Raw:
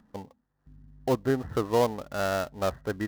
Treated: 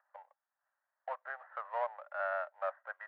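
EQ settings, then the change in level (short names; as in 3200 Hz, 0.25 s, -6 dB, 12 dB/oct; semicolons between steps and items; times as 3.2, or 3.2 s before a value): Chebyshev high-pass 570 Hz, order 6; ladder low-pass 1900 Hz, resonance 45%; 0.0 dB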